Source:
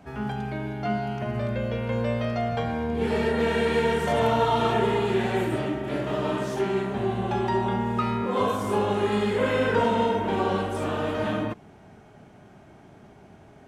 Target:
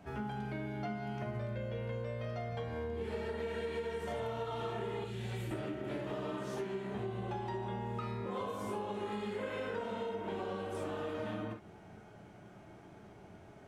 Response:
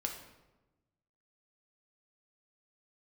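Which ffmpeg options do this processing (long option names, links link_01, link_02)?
-filter_complex "[0:a]asettb=1/sr,asplit=3[link_01][link_02][link_03];[link_01]atrim=end=5.044[link_04];[link_02]atrim=start=5.04:end=5.51,asetpts=PTS-STARTPTS,afade=type=in:duration=0.004:curve=qsin,afade=type=out:start_time=0.466:duration=0.004:curve=qsin,acrossover=split=180|3000[link_05][link_06][link_07];[link_06]acompressor=threshold=-37dB:ratio=6[link_08];[link_05][link_08][link_07]amix=inputs=3:normalize=0[link_09];[link_03]atrim=start=5.506[link_10];[link_04][link_09]acrossfade=duration=0.004:curve1=hsin:curve2=qsin[link_11];[link_11][link_10]acrossfade=duration=0.004:curve1=qsin:curve2=hsin[link_12];[1:a]atrim=start_sample=2205,atrim=end_sample=3087[link_13];[link_12][link_13]afir=irnorm=-1:irlink=0,acompressor=threshold=-31dB:ratio=10,volume=-4.5dB"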